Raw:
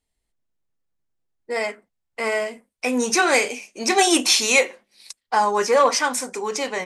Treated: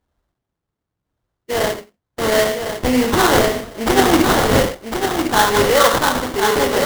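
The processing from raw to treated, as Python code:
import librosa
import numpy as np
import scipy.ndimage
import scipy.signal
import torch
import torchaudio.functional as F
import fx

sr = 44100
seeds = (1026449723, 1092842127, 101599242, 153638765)

p1 = scipy.signal.sosfilt(scipy.signal.butter(2, 60.0, 'highpass', fs=sr, output='sos'), x)
p2 = fx.low_shelf(p1, sr, hz=150.0, db=10.0)
p3 = fx.rider(p2, sr, range_db=10, speed_s=0.5)
p4 = p2 + F.gain(torch.from_numpy(p3), -3.0).numpy()
p5 = fx.rev_gated(p4, sr, seeds[0], gate_ms=130, shape='flat', drr_db=3.5)
p6 = fx.sample_hold(p5, sr, seeds[1], rate_hz=2500.0, jitter_pct=20)
p7 = p6 + fx.echo_feedback(p6, sr, ms=1054, feedback_pct=18, wet_db=-6.0, dry=0)
y = F.gain(torch.from_numpy(p7), -2.0).numpy()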